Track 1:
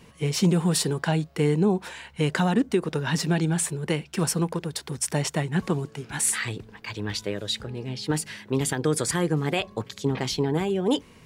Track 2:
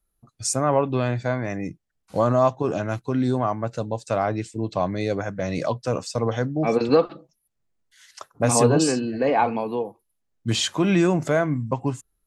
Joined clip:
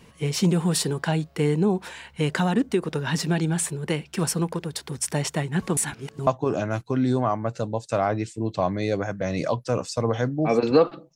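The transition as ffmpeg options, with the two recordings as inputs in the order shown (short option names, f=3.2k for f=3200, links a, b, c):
-filter_complex "[0:a]apad=whole_dur=11.15,atrim=end=11.15,asplit=2[a][b];[a]atrim=end=5.772[c];[b]atrim=start=5.768:end=6.272,asetpts=PTS-STARTPTS,areverse[d];[1:a]atrim=start=2.448:end=7.33[e];[c][d]acrossfade=d=0.004:c1=hsin:c2=hsin[f];[f][e]acrossfade=d=0.004:c1=hsin:c2=hsin"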